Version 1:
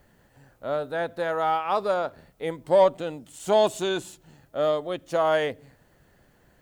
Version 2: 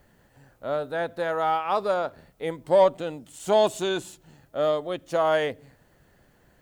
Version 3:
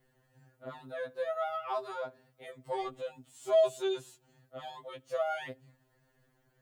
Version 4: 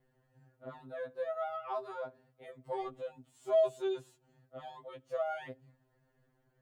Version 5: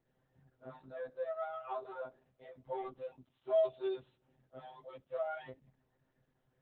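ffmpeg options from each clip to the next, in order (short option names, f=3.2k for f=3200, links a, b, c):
-af anull
-af "afftfilt=real='re*2.45*eq(mod(b,6),0)':imag='im*2.45*eq(mod(b,6),0)':win_size=2048:overlap=0.75,volume=-8.5dB"
-af "highshelf=f=2k:g=-9.5,volume=-1.5dB"
-af "volume=-2.5dB" -ar 48000 -c:a libopus -b:a 8k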